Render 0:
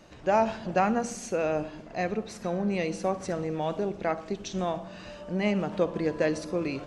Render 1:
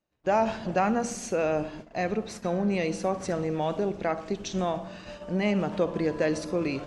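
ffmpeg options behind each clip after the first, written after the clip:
-filter_complex "[0:a]agate=range=0.0224:threshold=0.00708:ratio=16:detection=peak,asplit=2[s0][s1];[s1]alimiter=limit=0.0841:level=0:latency=1,volume=0.944[s2];[s0][s2]amix=inputs=2:normalize=0,volume=0.668"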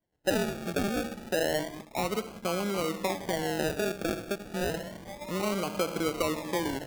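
-filter_complex "[0:a]acrossover=split=120|300|2400[s0][s1][s2][s3];[s0]acompressor=threshold=0.00112:ratio=4[s4];[s1]acompressor=threshold=0.0126:ratio=4[s5];[s2]acompressor=threshold=0.0501:ratio=4[s6];[s3]acompressor=threshold=0.00178:ratio=4[s7];[s4][s5][s6][s7]amix=inputs=4:normalize=0,acrusher=samples=34:mix=1:aa=0.000001:lfo=1:lforange=20.4:lforate=0.3"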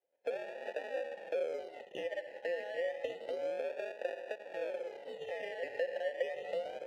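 -filter_complex "[0:a]afftfilt=real='real(if(between(b,1,1008),(2*floor((b-1)/48)+1)*48-b,b),0)':imag='imag(if(between(b,1,1008),(2*floor((b-1)/48)+1)*48-b,b),0)*if(between(b,1,1008),-1,1)':win_size=2048:overlap=0.75,acompressor=threshold=0.0158:ratio=5,asplit=3[s0][s1][s2];[s0]bandpass=f=530:t=q:w=8,volume=1[s3];[s1]bandpass=f=1840:t=q:w=8,volume=0.501[s4];[s2]bandpass=f=2480:t=q:w=8,volume=0.355[s5];[s3][s4][s5]amix=inputs=3:normalize=0,volume=2.82"

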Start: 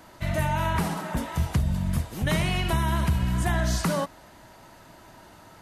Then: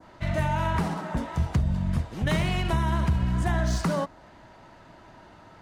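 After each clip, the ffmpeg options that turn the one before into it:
-af "adynamicequalizer=threshold=0.00501:dfrequency=2800:dqfactor=0.84:tfrequency=2800:tqfactor=0.84:attack=5:release=100:ratio=0.375:range=2:mode=cutabove:tftype=bell,adynamicsmooth=sensitivity=7.5:basefreq=4400"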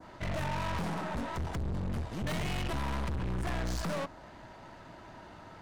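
-af "aeval=exprs='(tanh(56.2*val(0)+0.5)-tanh(0.5))/56.2':c=same,volume=1.33"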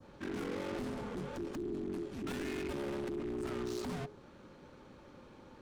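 -af "afreqshift=-420,volume=0.531"

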